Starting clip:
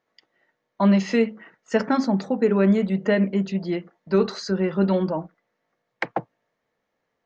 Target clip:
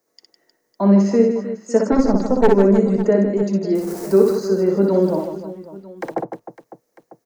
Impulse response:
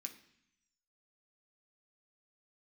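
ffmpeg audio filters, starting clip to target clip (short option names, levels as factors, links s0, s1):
-filter_complex "[0:a]asettb=1/sr,asplit=3[s0][s1][s2];[s0]atrim=end=3.754[s3];[s1]atrim=start=3.75:end=4.33,asetpts=PTS-STARTPTS,afade=t=in:d=0.004:c=qsin,afade=t=out:st=0.576:d=0.004:c=qsin,aeval=exprs='val(0)+0.5*0.0282*sgn(val(0))':c=same[s4];[s2]atrim=start=4.326[s5];[s3][s4]acrossfade=d=0.004:c1=hsin:c2=qsin[s6];[s6][s5]acrossfade=d=0.004:c1=qsin:c2=hsin,equalizer=f=380:t=o:w=1.7:g=10.5,acrossover=split=210|1700[s7][s8][s9];[s9]acompressor=threshold=0.00316:ratio=5[s10];[s7][s8][s10]amix=inputs=3:normalize=0,aexciter=amount=7:drive=7.2:freq=4800,asettb=1/sr,asplit=3[s11][s12][s13];[s11]atrim=end=1.924[s14];[s12]atrim=start=1.92:end=2.49,asetpts=PTS-STARTPTS,afade=t=in:d=0.004:c=qsin,afade=t=out:st=0.566:d=0.004:c=qsin,aeval=exprs='0.562*(cos(1*acos(clip(val(0)/0.562,-1,1)))-cos(1*PI/2))+0.251*(cos(2*acos(clip(val(0)/0.562,-1,1)))-cos(2*PI/2))':c=same[s15];[s13]atrim=start=2.486[s16];[s14][s15]acrossfade=d=0.004:c1=hsin:c2=qsin[s17];[s17][s16]acrossfade=d=0.004:c1=qsin:c2=hsin,asettb=1/sr,asplit=3[s18][s19][s20];[s18]atrim=end=5.024[s21];[s19]atrim=start=5.02:end=6.09,asetpts=PTS-STARTPTS,afade=t=in:d=0.004:c=qsin,afade=t=out:st=1.066:d=0.004:c=qsin,acrusher=bits=8:dc=4:mix=0:aa=0.000001[s22];[s20]atrim=start=6.086[s23];[s21][s22]acrossfade=d=0.004:c1=hsin:c2=qsin[s24];[s24][s23]acrossfade=d=0.004:c1=qsin:c2=hsin,asplit=2[s25][s26];[s26]aecho=0:1:60|156|309.6|555.4|948.6:0.631|0.398|0.251|0.158|0.1[s27];[s25][s27]amix=inputs=2:normalize=0,volume=0.631"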